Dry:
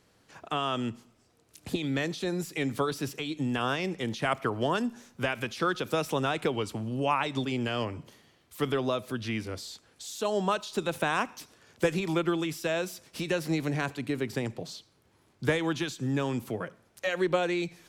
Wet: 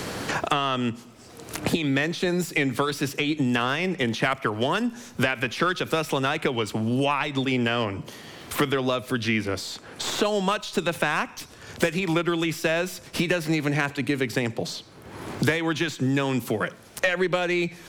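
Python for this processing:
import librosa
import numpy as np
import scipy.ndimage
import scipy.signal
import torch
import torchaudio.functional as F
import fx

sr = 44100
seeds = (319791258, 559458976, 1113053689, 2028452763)

y = fx.tracing_dist(x, sr, depth_ms=0.027)
y = fx.dynamic_eq(y, sr, hz=2100.0, q=1.1, threshold_db=-45.0, ratio=4.0, max_db=5)
y = fx.band_squash(y, sr, depth_pct=100)
y = y * librosa.db_to_amplitude(3.5)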